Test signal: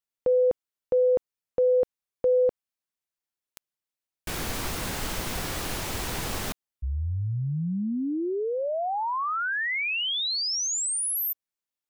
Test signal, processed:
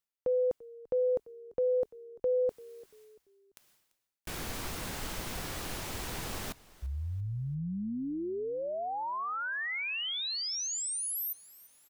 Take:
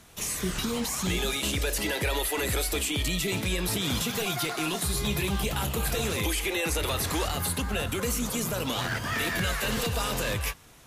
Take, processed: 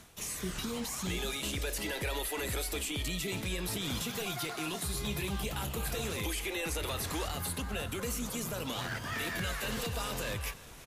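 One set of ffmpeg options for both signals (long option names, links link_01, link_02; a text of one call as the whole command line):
ffmpeg -i in.wav -filter_complex "[0:a]areverse,acompressor=mode=upward:threshold=-30dB:ratio=2.5:attack=0.17:release=318:knee=2.83:detection=peak,areverse,asplit=4[link_01][link_02][link_03][link_04];[link_02]adelay=341,afreqshift=-36,volume=-21dB[link_05];[link_03]adelay=682,afreqshift=-72,volume=-29.6dB[link_06];[link_04]adelay=1023,afreqshift=-108,volume=-38.3dB[link_07];[link_01][link_05][link_06][link_07]amix=inputs=4:normalize=0,volume=-7dB" out.wav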